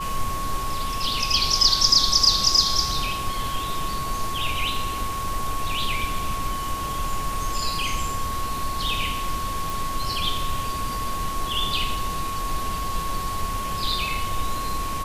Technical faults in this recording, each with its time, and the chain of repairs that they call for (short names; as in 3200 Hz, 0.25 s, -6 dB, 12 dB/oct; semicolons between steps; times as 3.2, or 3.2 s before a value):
tone 1100 Hz -28 dBFS
9.7 pop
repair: de-click; notch 1100 Hz, Q 30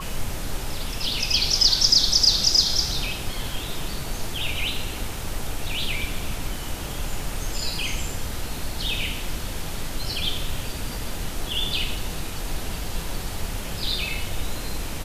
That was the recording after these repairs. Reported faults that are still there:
none